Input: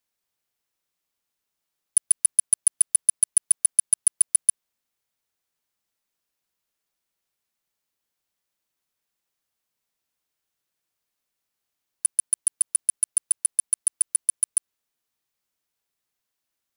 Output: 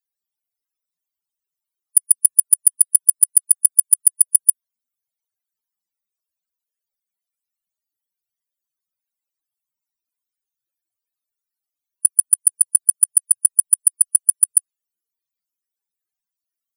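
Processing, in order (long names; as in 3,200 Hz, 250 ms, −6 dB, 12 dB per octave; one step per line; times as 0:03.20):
spectral peaks only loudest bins 32
dynamic equaliser 9,300 Hz, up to +5 dB, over −29 dBFS, Q 1.5
soft clipping −10.5 dBFS, distortion −13 dB
high-shelf EQ 6,600 Hz +11.5 dB
level −1.5 dB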